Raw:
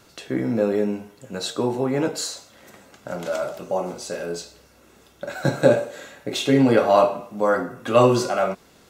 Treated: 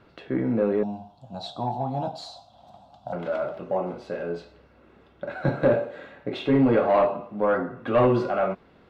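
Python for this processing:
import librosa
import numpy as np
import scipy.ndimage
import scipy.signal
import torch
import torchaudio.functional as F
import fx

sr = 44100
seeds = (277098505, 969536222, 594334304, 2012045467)

y = fx.curve_eq(x, sr, hz=(130.0, 250.0, 450.0, 720.0, 2000.0, 3500.0, 8800.0, 13000.0), db=(0, -7, -21, 11, -26, 5, 6, -1), at=(0.83, 3.13))
y = 10.0 ** (-11.5 / 20.0) * np.tanh(y / 10.0 ** (-11.5 / 20.0))
y = fx.air_absorb(y, sr, metres=410.0)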